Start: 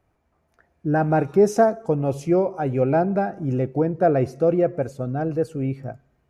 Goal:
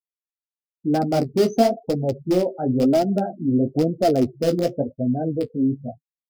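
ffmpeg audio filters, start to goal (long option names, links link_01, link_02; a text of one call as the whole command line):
ffmpeg -i in.wav -filter_complex "[0:a]afftfilt=real='re*gte(hypot(re,im),0.0708)':imag='im*gte(hypot(re,im),0.0708)':win_size=1024:overlap=0.75,asplit=2[link_01][link_02];[link_02]aeval=exprs='(mod(4.22*val(0)+1,2)-1)/4.22':channel_layout=same,volume=-12dB[link_03];[link_01][link_03]amix=inputs=2:normalize=0,equalizer=frequency=250:width_type=o:width=0.33:gain=12,equalizer=frequency=630:width_type=o:width=0.33:gain=4,equalizer=frequency=1000:width_type=o:width=0.33:gain=-9,equalizer=frequency=1600:width_type=o:width=0.33:gain=-9,equalizer=frequency=5000:width_type=o:width=0.33:gain=12,flanger=delay=8.8:depth=9.6:regen=-25:speed=0.98:shape=sinusoidal" out.wav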